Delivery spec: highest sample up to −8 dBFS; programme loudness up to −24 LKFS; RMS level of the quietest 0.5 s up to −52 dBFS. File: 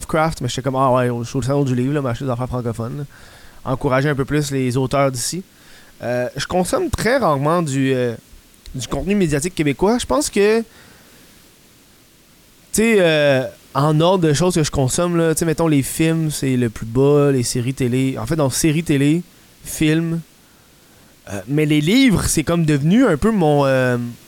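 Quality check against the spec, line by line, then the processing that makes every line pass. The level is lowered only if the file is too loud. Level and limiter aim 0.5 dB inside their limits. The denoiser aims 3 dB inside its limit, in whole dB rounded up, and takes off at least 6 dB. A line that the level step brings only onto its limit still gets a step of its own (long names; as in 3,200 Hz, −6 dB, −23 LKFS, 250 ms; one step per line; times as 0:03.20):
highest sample −5.0 dBFS: out of spec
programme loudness −17.5 LKFS: out of spec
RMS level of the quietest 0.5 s −50 dBFS: out of spec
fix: level −7 dB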